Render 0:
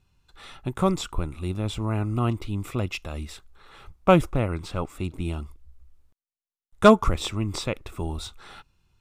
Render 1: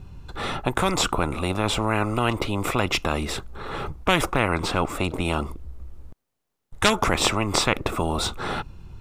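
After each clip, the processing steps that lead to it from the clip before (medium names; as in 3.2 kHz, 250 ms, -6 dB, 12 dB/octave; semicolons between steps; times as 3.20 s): tilt shelf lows +7.5 dB, about 1.2 kHz; spectrum-flattening compressor 4:1; trim -3.5 dB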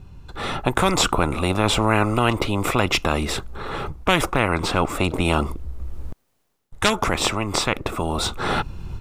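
level rider gain up to 12.5 dB; trim -1 dB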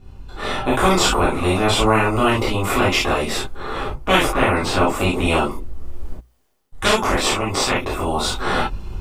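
hum notches 60/120 Hz; gated-style reverb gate 90 ms flat, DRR -7.5 dB; trim -5 dB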